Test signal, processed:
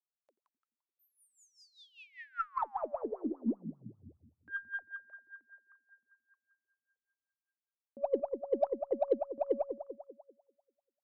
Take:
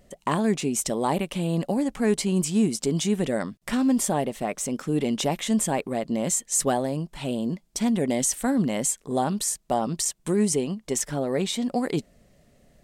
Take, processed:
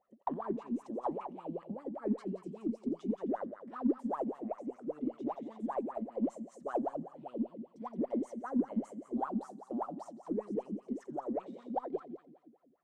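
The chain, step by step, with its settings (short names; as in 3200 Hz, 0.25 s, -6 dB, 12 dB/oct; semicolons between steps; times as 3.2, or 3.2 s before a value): multi-head echo 86 ms, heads first and second, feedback 52%, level -12 dB; wah 5.1 Hz 220–1300 Hz, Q 16; added harmonics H 8 -40 dB, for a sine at -18.5 dBFS; gain +2 dB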